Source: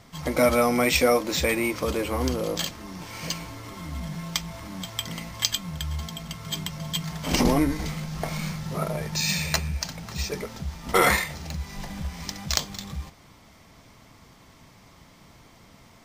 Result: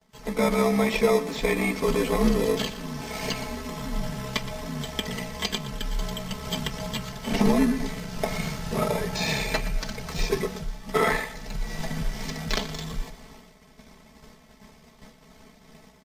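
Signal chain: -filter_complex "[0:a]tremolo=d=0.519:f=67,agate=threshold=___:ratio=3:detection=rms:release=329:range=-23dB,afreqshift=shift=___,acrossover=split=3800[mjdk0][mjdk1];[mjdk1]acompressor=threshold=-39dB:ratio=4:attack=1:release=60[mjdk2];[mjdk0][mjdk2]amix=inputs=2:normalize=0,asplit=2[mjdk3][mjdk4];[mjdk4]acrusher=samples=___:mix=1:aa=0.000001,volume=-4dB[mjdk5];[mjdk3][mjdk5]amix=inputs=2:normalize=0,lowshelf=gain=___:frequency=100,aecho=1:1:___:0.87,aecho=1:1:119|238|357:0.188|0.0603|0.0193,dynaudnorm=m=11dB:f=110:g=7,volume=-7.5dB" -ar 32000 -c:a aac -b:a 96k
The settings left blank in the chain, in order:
-48dB, -40, 30, -4.5, 4.6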